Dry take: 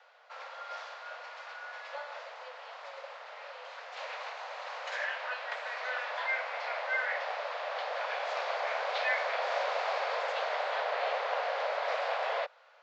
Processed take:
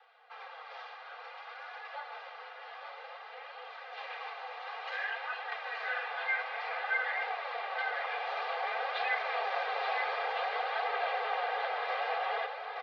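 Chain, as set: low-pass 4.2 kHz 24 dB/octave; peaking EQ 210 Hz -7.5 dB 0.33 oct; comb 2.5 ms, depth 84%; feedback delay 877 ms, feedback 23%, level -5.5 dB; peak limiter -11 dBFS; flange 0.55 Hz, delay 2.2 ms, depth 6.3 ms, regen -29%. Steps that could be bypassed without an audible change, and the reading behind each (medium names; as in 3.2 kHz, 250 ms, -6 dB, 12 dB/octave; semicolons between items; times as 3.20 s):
peaking EQ 210 Hz: input has nothing below 380 Hz; peak limiter -11 dBFS: peak at its input -16.5 dBFS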